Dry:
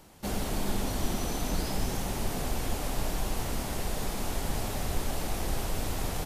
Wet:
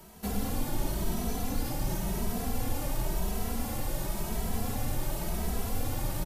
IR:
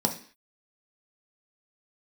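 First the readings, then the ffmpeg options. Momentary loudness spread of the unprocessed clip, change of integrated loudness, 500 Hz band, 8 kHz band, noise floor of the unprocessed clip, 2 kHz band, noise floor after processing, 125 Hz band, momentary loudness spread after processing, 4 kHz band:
2 LU, -0.5 dB, -2.0 dB, -2.0 dB, -35 dBFS, -4.0 dB, -36 dBFS, +0.5 dB, 2 LU, -4.5 dB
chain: -filter_complex "[0:a]aemphasis=mode=production:type=50fm,acrossover=split=180[a][b];[b]acompressor=threshold=-30dB:ratio=6[c];[a][c]amix=inputs=2:normalize=0,asplit=2[d][e];[e]alimiter=level_in=3.5dB:limit=-24dB:level=0:latency=1,volume=-3.5dB,volume=-1.5dB[f];[d][f]amix=inputs=2:normalize=0,highshelf=f=3.1k:g=-10.5,asplit=2[g][h];[1:a]atrim=start_sample=2205,adelay=106[i];[h][i]afir=irnorm=-1:irlink=0,volume=-20.5dB[j];[g][j]amix=inputs=2:normalize=0,asplit=2[k][l];[l]adelay=2.7,afreqshift=0.94[m];[k][m]amix=inputs=2:normalize=1,volume=1dB"

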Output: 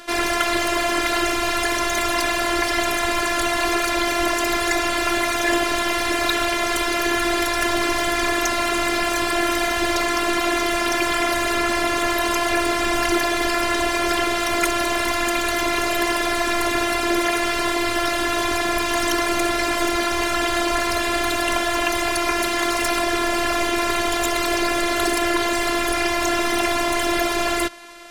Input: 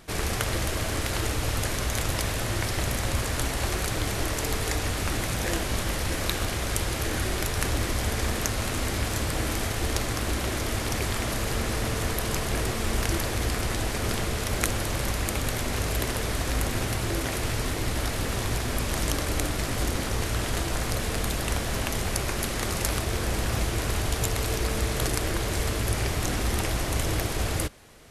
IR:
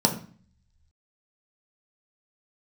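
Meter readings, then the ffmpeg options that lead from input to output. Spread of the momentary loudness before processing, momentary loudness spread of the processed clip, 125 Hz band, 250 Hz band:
1 LU, 1 LU, -11.5 dB, +9.0 dB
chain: -filter_complex "[0:a]afftfilt=real='hypot(re,im)*cos(PI*b)':imag='0':win_size=512:overlap=0.75,acontrast=73,asplit=2[a][b];[b]highpass=f=720:p=1,volume=18dB,asoftclip=type=tanh:threshold=-2dB[c];[a][c]amix=inputs=2:normalize=0,lowpass=f=3.1k:p=1,volume=-6dB"

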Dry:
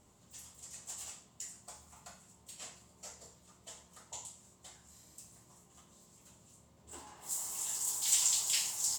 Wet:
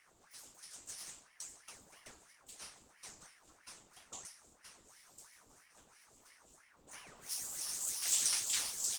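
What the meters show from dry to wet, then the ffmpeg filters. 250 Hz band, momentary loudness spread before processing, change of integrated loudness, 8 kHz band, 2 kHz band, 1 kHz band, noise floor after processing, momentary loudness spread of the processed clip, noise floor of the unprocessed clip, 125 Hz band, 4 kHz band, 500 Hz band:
-3.5 dB, 24 LU, -3.0 dB, -3.5 dB, +0.5 dB, -3.0 dB, -68 dBFS, 24 LU, -65 dBFS, -7.0 dB, -2.0 dB, -2.5 dB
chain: -af "aeval=exprs='val(0)*sin(2*PI*1100*n/s+1100*0.9/3*sin(2*PI*3*n/s))':c=same"

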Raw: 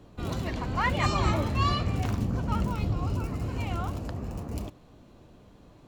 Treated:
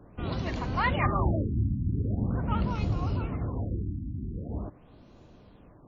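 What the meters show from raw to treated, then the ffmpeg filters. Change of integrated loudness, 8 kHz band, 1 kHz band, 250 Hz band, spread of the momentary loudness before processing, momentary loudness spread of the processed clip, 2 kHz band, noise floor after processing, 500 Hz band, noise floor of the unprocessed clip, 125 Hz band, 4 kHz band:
-1.0 dB, under -15 dB, -2.5 dB, 0.0 dB, 10 LU, 10 LU, -1.5 dB, -54 dBFS, -1.0 dB, -54 dBFS, 0.0 dB, -7.5 dB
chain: -af "afftfilt=real='re*lt(b*sr/1024,320*pow(7300/320,0.5+0.5*sin(2*PI*0.43*pts/sr)))':imag='im*lt(b*sr/1024,320*pow(7300/320,0.5+0.5*sin(2*PI*0.43*pts/sr)))':win_size=1024:overlap=0.75"

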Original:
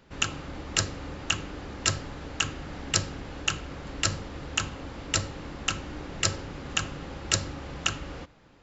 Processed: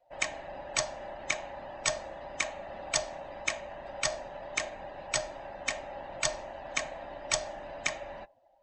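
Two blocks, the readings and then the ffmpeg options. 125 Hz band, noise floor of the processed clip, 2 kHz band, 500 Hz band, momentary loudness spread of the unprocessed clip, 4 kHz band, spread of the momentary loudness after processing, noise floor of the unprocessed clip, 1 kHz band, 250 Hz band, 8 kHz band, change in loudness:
-17.0 dB, -63 dBFS, -2.0 dB, +3.5 dB, 11 LU, -7.0 dB, 10 LU, -56 dBFS, -1.0 dB, -13.0 dB, n/a, -4.0 dB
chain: -af "afftfilt=real='real(if(lt(b,1008),b+24*(1-2*mod(floor(b/24),2)),b),0)':imag='imag(if(lt(b,1008),b+24*(1-2*mod(floor(b/24),2)),b),0)':win_size=2048:overlap=0.75,afftdn=nr=19:nf=-50,volume=-4dB"

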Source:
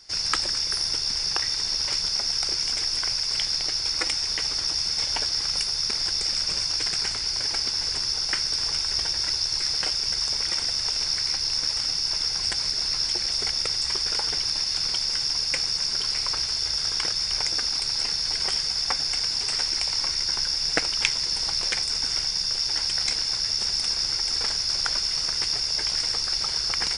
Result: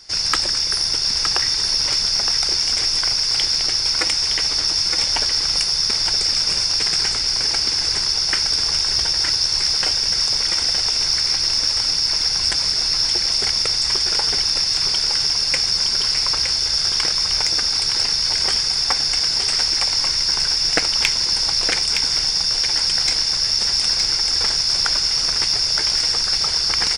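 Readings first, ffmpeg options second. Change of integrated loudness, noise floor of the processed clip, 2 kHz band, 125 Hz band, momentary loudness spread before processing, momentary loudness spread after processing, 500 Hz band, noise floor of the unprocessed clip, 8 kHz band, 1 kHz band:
+7.0 dB, -22 dBFS, +6.5 dB, +6.5 dB, 1 LU, 1 LU, +6.5 dB, -29 dBFS, +7.0 dB, +6.5 dB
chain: -filter_complex "[0:a]acontrast=84,asplit=2[a][b];[b]aecho=0:1:916:0.473[c];[a][c]amix=inputs=2:normalize=0,volume=-1dB"

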